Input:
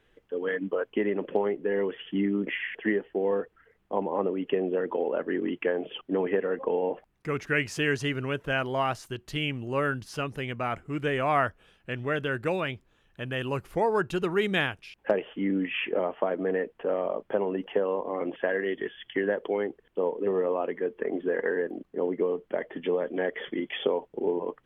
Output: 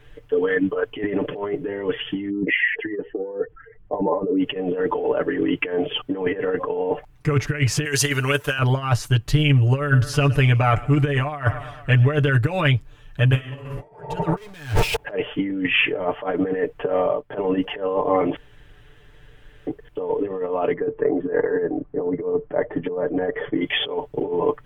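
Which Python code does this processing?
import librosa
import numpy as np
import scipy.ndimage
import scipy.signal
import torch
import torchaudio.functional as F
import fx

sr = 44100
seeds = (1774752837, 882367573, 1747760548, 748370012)

y = fx.spec_expand(x, sr, power=1.6, at=(2.29, 4.39), fade=0.02)
y = fx.riaa(y, sr, side='recording', at=(7.85, 8.59))
y = fx.echo_feedback(y, sr, ms=113, feedback_pct=58, wet_db=-21.5, at=(9.79, 12.07))
y = fx.reverb_throw(y, sr, start_s=13.27, length_s=0.59, rt60_s=1.2, drr_db=-11.5)
y = fx.power_curve(y, sr, exponent=0.35, at=(14.37, 14.96))
y = fx.upward_expand(y, sr, threshold_db=-47.0, expansion=1.5, at=(16.9, 17.41))
y = fx.lowpass(y, sr, hz=1200.0, slope=12, at=(20.73, 23.61))
y = fx.edit(y, sr, fx.room_tone_fill(start_s=18.36, length_s=1.31), tone=tone)
y = fx.over_compress(y, sr, threshold_db=-30.0, ratio=-0.5)
y = fx.low_shelf_res(y, sr, hz=140.0, db=10.5, q=1.5)
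y = y + 0.86 * np.pad(y, (int(6.8 * sr / 1000.0), 0))[:len(y)]
y = y * 10.0 ** (6.0 / 20.0)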